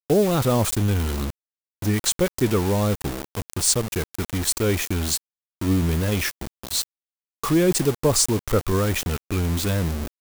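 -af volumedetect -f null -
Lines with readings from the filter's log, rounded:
mean_volume: -23.0 dB
max_volume: -6.6 dB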